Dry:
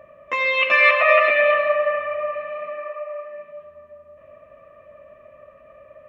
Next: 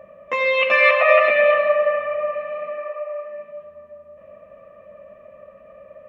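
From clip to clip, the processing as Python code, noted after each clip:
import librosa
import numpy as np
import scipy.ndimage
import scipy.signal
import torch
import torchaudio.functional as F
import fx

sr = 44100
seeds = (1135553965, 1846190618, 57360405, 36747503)

y = fx.graphic_eq_31(x, sr, hz=(200, 500, 800), db=(11, 8, 6))
y = F.gain(torch.from_numpy(y), -1.0).numpy()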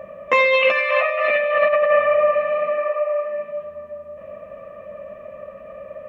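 y = fx.over_compress(x, sr, threshold_db=-21.0, ratio=-1.0)
y = F.gain(torch.from_numpy(y), 4.0).numpy()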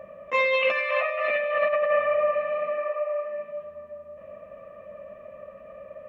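y = fx.attack_slew(x, sr, db_per_s=410.0)
y = F.gain(torch.from_numpy(y), -6.5).numpy()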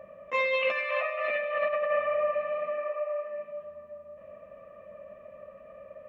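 y = x + 10.0 ** (-17.0 / 20.0) * np.pad(x, (int(128 * sr / 1000.0), 0))[:len(x)]
y = F.gain(torch.from_numpy(y), -4.5).numpy()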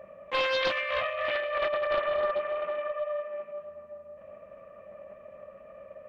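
y = fx.doppler_dist(x, sr, depth_ms=0.32)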